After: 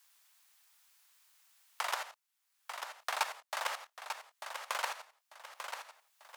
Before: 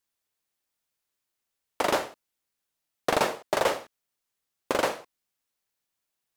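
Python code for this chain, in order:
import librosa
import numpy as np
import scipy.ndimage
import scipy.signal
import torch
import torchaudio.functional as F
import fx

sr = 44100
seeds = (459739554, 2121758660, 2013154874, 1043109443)

y = fx.octave_divider(x, sr, octaves=1, level_db=1.0)
y = scipy.signal.sosfilt(scipy.signal.butter(4, 850.0, 'highpass', fs=sr, output='sos'), y)
y = fx.level_steps(y, sr, step_db=13)
y = fx.echo_feedback(y, sr, ms=893, feedback_pct=26, wet_db=-16.0)
y = fx.band_squash(y, sr, depth_pct=70)
y = F.gain(torch.from_numpy(y), 2.5).numpy()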